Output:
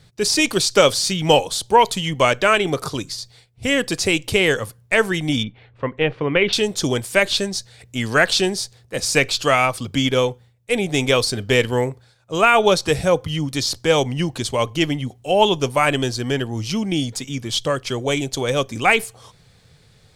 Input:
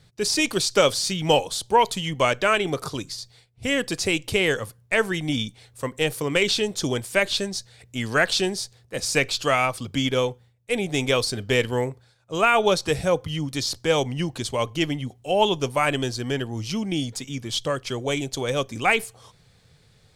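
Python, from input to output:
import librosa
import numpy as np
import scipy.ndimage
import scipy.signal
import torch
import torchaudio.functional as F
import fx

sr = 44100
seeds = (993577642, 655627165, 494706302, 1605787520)

y = fx.lowpass(x, sr, hz=2800.0, slope=24, at=(5.43, 6.53))
y = y * librosa.db_to_amplitude(4.5)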